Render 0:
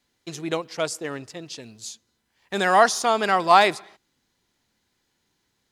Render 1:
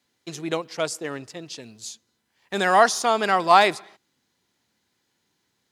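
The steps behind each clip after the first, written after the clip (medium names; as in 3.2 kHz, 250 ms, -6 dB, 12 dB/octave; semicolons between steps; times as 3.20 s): high-pass 95 Hz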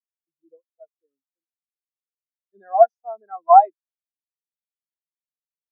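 spectral contrast expander 4:1; trim +2 dB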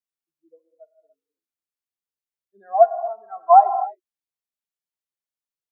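gated-style reverb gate 310 ms flat, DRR 9.5 dB; trim -1 dB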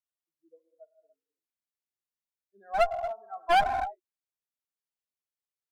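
one-sided clip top -25 dBFS, bottom -8 dBFS; trim -5 dB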